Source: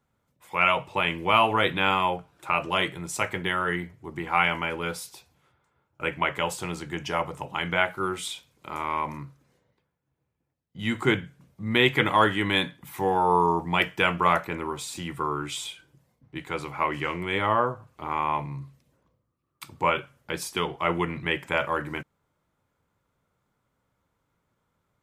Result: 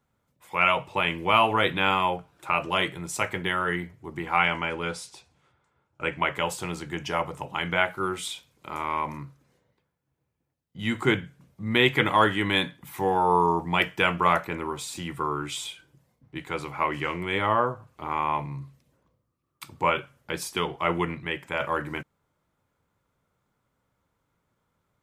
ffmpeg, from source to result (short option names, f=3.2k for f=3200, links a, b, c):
-filter_complex "[0:a]asettb=1/sr,asplit=3[a][b][c];[a]atrim=end=4.374[d];[b]atrim=start=4.37:end=6.18,asetpts=PTS-STARTPTS,afade=t=in:d=0.004:c=qsin,afade=t=out:st=1.806:d=0.004:c=qsin,lowpass=f=9.4k:w=0.5412,lowpass=f=9.4k:w=1.3066[e];[c]atrim=start=6.176[f];[d][e]acrossfade=d=0.004:c1=hsin:c2=qsin[g];[g][f]acrossfade=d=0.004:c1=qsin:c2=hsin,asplit=3[h][i][j];[h]atrim=end=21.152[k];[i]atrim=start=21.148:end=21.602,asetpts=PTS-STARTPTS,volume=-4dB[l];[j]atrim=start=21.598[m];[k][l]acrossfade=d=0.004:c1=hsin:c2=hsin[n];[n][m]acrossfade=d=0.004:c1=hsin:c2=hsin"